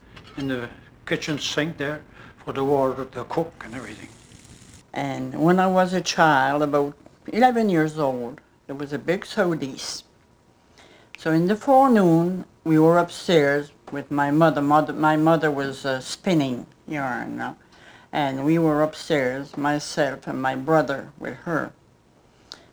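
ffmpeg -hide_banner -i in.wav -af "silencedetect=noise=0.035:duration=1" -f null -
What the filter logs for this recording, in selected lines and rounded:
silence_start: 9.99
silence_end: 11.15 | silence_duration: 1.16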